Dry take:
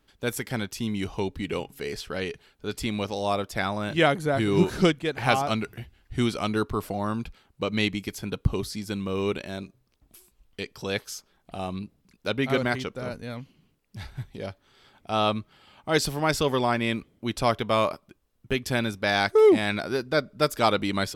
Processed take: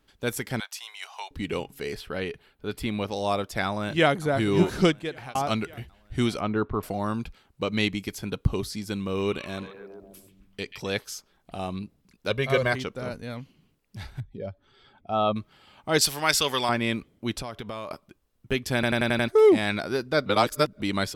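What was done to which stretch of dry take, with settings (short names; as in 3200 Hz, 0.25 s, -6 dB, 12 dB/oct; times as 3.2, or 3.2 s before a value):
0.6–1.31 steep high-pass 700 Hz
1.95–3.11 bell 6400 Hz -10 dB 1 oct
3.65–4.21 echo throw 0.56 s, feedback 55%, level -17.5 dB
4.9–5.35 fade out linear
6.4–6.83 LPF 1900 Hz
8.96–10.9 delay with a stepping band-pass 0.135 s, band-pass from 2500 Hz, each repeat -0.7 oct, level -6 dB
12.3–12.73 comb 1.8 ms, depth 71%
14.2–15.36 spectral contrast raised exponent 1.6
16.01–16.69 tilt shelf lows -8.5 dB
17.41–17.91 compressor 10:1, threshold -31 dBFS
18.74 stutter in place 0.09 s, 6 plays
20.26–20.8 reverse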